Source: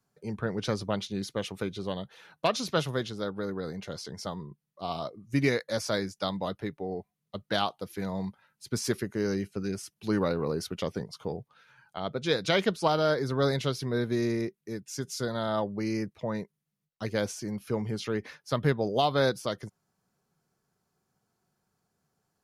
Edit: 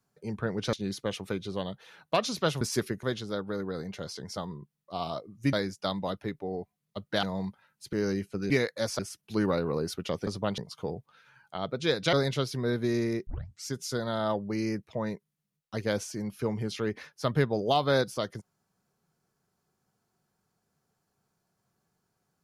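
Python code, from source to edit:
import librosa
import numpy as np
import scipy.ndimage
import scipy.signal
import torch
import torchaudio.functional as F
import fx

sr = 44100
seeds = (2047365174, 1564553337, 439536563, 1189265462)

y = fx.edit(x, sr, fx.move(start_s=0.73, length_s=0.31, to_s=11.0),
    fx.move(start_s=5.42, length_s=0.49, to_s=9.72),
    fx.cut(start_s=7.61, length_s=0.42),
    fx.move(start_s=8.73, length_s=0.42, to_s=2.92),
    fx.cut(start_s=12.55, length_s=0.86),
    fx.tape_start(start_s=14.55, length_s=0.4), tone=tone)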